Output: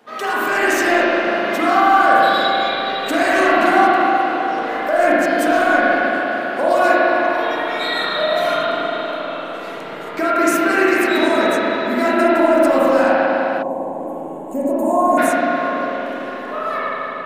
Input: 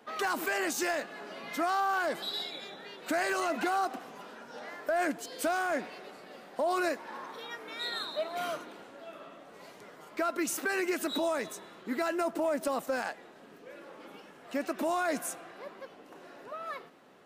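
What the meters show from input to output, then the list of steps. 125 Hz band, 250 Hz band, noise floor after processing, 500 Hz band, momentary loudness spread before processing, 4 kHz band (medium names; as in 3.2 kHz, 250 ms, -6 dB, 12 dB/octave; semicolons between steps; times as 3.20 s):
+17.5 dB, +17.5 dB, -29 dBFS, +17.5 dB, 19 LU, +14.0 dB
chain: level rider gain up to 5.5 dB; spring tank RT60 3.5 s, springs 37/50 ms, chirp 75 ms, DRR -10 dB; in parallel at -3 dB: compression, threshold -25 dBFS, peak gain reduction 14.5 dB; on the sum: time-frequency box 13.62–15.18 s, 1.1–6.4 kHz -23 dB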